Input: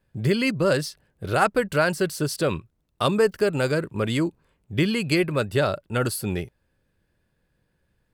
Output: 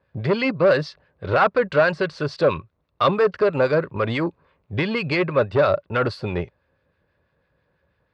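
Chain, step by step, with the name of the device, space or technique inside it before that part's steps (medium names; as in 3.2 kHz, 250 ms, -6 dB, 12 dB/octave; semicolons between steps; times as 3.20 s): guitar amplifier with harmonic tremolo (harmonic tremolo 6.1 Hz, depth 50%, crossover 1.2 kHz; saturation -19.5 dBFS, distortion -13 dB; cabinet simulation 75–4000 Hz, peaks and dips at 130 Hz -5 dB, 210 Hz -7 dB, 320 Hz -5 dB, 560 Hz +5 dB, 1.1 kHz +6 dB, 3.1 kHz -5 dB); trim +7.5 dB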